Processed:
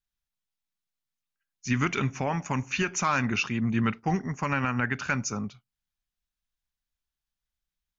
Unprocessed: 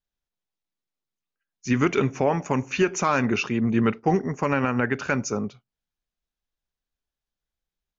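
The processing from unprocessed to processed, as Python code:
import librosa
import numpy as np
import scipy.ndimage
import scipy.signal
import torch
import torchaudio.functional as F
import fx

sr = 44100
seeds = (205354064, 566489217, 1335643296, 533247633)

y = fx.peak_eq(x, sr, hz=440.0, db=-12.5, octaves=1.4)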